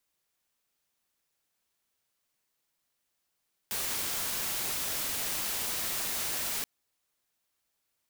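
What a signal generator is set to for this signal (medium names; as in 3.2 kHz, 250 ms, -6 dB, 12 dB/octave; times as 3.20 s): noise white, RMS -33 dBFS 2.93 s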